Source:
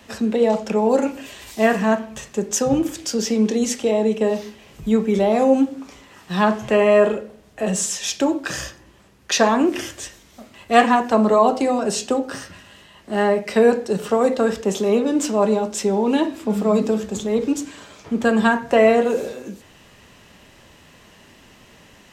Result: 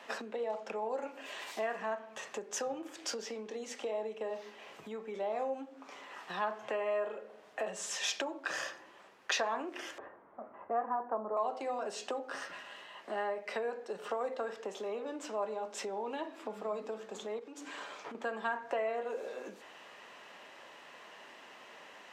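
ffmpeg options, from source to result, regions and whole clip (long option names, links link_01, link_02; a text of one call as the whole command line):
ffmpeg -i in.wav -filter_complex "[0:a]asettb=1/sr,asplit=3[link_01][link_02][link_03];[link_01]atrim=end=9.984[link_04];[link_02]atrim=start=9.98:end=11.37,asetpts=PTS-STARTPTS,afade=type=in:duration=0.004:curve=qsin,afade=type=out:start_time=1.386:duration=0.004:curve=qsin,lowpass=frequency=1300:width=0.5412,lowpass=frequency=1300:width=1.3066,lowshelf=frequency=150:gain=7.5[link_05];[link_03]atrim=start=11.366[link_06];[link_04][link_05]acrossfade=duration=0.004:curve1=hsin:curve2=qsin[link_07];[link_07][link_06]acrossfade=duration=0.004:curve1=qsin:curve2=hsin,asettb=1/sr,asplit=3[link_08][link_09][link_10];[link_08]atrim=end=17.394[link_11];[link_09]atrim=start=17.39:end=18.15,asetpts=PTS-STARTPTS,afade=type=in:duration=0.004:curve=qsin,afade=type=out:start_time=0.756:duration=0.004:curve=qsin,bandreject=frequency=640:width=20,acompressor=threshold=-28dB:ratio=5:attack=3.2:release=140:knee=1:detection=peak[link_12];[link_10]atrim=start=18.146[link_13];[link_11][link_12]acrossfade=duration=0.004:curve1=hsin:curve2=qsin[link_14];[link_14][link_13]acrossfade=duration=0.004:curve1=qsin:curve2=hsin,lowpass=frequency=1400:poles=1,acompressor=threshold=-33dB:ratio=4,highpass=660,volume=3dB" out.wav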